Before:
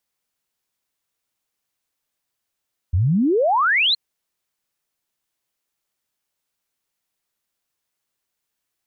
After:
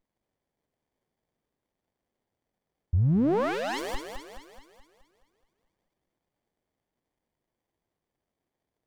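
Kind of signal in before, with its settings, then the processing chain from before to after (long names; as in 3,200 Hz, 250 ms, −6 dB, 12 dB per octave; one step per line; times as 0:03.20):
exponential sine sweep 79 Hz → 4,300 Hz 1.02 s −14.5 dBFS
brickwall limiter −18.5 dBFS
feedback echo with a high-pass in the loop 213 ms, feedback 54%, high-pass 360 Hz, level −7 dB
windowed peak hold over 33 samples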